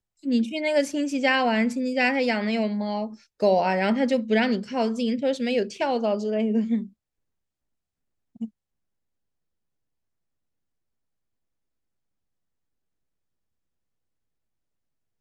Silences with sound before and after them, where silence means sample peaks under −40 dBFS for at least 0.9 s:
0:06.87–0:08.36

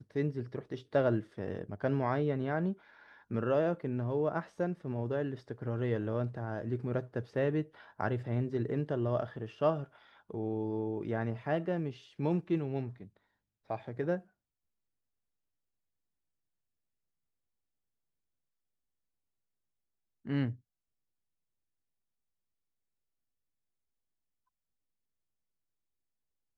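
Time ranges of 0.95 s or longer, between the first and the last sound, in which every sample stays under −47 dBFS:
0:14.21–0:20.25

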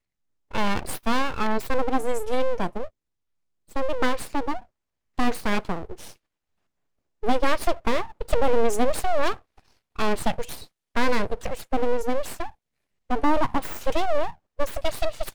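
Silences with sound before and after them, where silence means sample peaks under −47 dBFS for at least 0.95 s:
0:06.16–0:07.23

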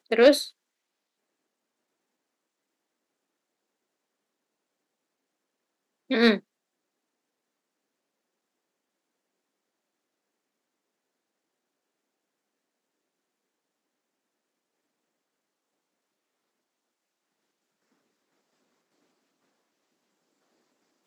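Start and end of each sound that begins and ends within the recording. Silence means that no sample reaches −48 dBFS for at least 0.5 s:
0:06.10–0:06.40

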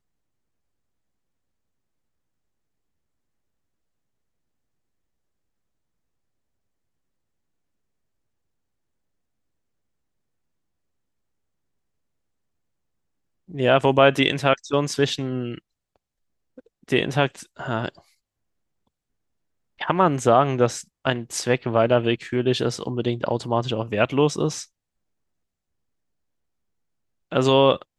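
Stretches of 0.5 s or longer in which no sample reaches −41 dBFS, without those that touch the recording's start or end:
0:15.59–0:16.58
0:17.99–0:19.79
0:24.65–0:27.32

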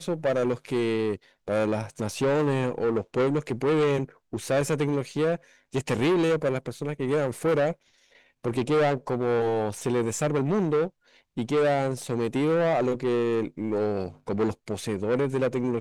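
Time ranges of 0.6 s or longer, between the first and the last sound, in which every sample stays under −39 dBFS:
0:07.73–0:08.45

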